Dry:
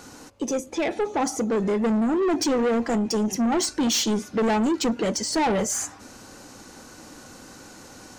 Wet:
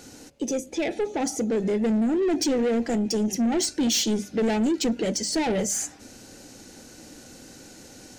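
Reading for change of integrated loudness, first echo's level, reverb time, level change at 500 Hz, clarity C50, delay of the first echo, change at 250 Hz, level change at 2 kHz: -1.0 dB, none, none, -1.0 dB, none, none, -0.5 dB, -3.0 dB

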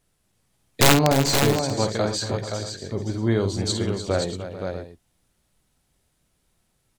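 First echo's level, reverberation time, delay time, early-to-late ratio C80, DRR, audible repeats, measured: -8.5 dB, none, 52 ms, none, none, 5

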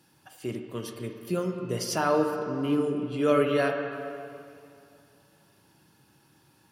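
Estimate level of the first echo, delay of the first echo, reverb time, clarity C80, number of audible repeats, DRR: none, none, 2.5 s, 6.0 dB, none, 4.0 dB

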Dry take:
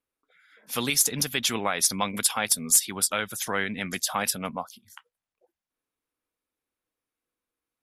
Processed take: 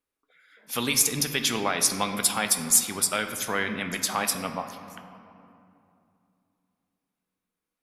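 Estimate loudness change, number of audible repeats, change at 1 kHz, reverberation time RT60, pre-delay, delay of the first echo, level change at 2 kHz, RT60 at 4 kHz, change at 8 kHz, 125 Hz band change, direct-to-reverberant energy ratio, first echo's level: +0.5 dB, none, +1.0 dB, 2.7 s, 3 ms, none, +1.0 dB, 1.5 s, +0.5 dB, +0.5 dB, 6.5 dB, none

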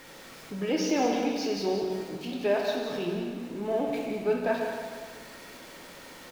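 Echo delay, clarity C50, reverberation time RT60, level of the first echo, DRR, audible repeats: 0.182 s, 1.5 dB, 1.7 s, -8.5 dB, -0.5 dB, 1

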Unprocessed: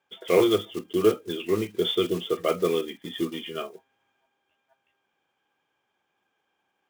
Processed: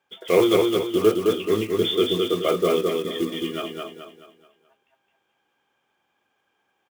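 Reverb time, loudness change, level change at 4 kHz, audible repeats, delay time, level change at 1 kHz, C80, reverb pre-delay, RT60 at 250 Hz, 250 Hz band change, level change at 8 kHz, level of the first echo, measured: none, +4.0 dB, +4.0 dB, 5, 0.214 s, +4.0 dB, none, none, none, +4.0 dB, +4.0 dB, -3.0 dB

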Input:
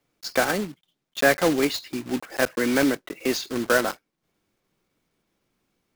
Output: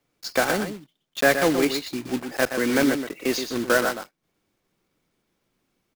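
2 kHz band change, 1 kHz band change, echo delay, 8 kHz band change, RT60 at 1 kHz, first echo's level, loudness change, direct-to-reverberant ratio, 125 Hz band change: +0.5 dB, +0.5 dB, 0.122 s, +0.5 dB, none, -8.0 dB, +0.5 dB, none, +0.5 dB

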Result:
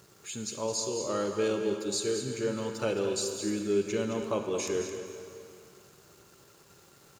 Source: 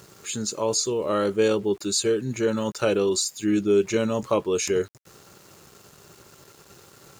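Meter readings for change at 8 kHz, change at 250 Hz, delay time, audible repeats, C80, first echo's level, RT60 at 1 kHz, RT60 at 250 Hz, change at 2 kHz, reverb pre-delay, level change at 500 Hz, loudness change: -7.0 dB, -7.5 dB, 0.217 s, 1, 4.5 dB, -9.0 dB, 2.7 s, 2.6 s, -7.0 dB, 40 ms, -7.0 dB, -7.5 dB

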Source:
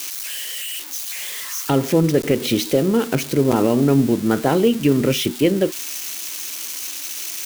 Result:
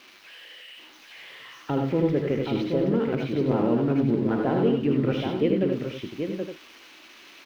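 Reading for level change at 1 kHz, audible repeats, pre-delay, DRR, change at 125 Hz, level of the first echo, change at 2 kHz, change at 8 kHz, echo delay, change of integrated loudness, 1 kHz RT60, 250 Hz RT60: -6.5 dB, 4, none, none, -5.5 dB, -6.0 dB, -9.0 dB, under -30 dB, 76 ms, -5.0 dB, none, none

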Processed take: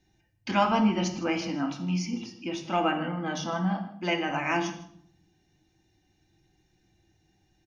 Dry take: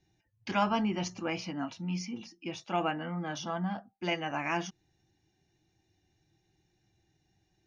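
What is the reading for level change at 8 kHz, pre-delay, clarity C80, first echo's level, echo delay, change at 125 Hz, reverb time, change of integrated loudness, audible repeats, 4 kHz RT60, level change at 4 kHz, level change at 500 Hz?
n/a, 3 ms, 11.5 dB, -17.5 dB, 0.157 s, +5.0 dB, 0.60 s, +5.5 dB, 1, 0.50 s, +4.5 dB, +5.0 dB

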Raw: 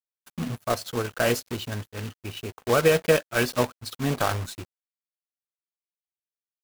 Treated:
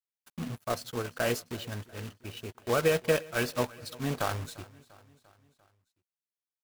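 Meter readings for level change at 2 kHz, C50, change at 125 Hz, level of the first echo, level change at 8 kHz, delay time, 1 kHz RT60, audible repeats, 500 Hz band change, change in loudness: -6.0 dB, none, -6.0 dB, -21.5 dB, -6.0 dB, 0.346 s, none, 3, -6.0 dB, -6.5 dB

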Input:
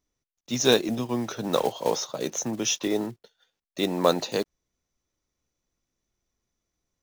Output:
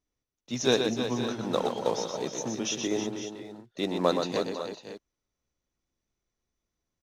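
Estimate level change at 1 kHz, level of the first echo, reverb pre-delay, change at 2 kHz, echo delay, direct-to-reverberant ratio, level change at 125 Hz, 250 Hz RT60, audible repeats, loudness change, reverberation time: -2.5 dB, -6.0 dB, none, -3.0 dB, 0.123 s, none, -2.5 dB, none, 4, -3.5 dB, none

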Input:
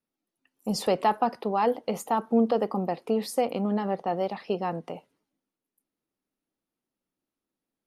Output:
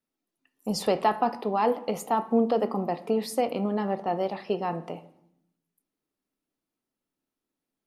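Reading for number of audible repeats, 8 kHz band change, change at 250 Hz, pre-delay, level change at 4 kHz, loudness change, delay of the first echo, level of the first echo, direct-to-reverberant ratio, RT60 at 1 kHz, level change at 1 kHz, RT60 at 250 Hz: none, 0.0 dB, -0.5 dB, 3 ms, 0.0 dB, 0.0 dB, none, none, 10.0 dB, 0.75 s, 0.0 dB, 1.1 s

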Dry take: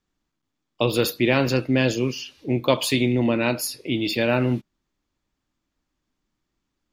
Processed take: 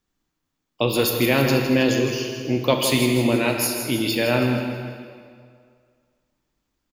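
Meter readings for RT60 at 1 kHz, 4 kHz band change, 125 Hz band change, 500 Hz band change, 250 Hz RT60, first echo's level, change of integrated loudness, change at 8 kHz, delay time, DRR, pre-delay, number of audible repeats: 2.1 s, +2.5 dB, +1.0 dB, +1.5 dB, 2.0 s, -8.5 dB, +1.5 dB, +5.0 dB, 0.161 s, 2.5 dB, 25 ms, 4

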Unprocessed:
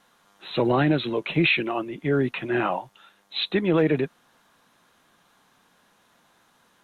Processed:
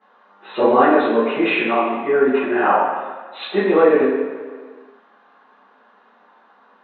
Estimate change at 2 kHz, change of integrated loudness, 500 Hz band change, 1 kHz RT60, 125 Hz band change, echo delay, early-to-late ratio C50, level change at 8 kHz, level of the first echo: +5.0 dB, +7.0 dB, +9.5 dB, 1.6 s, under -10 dB, none, 0.0 dB, n/a, none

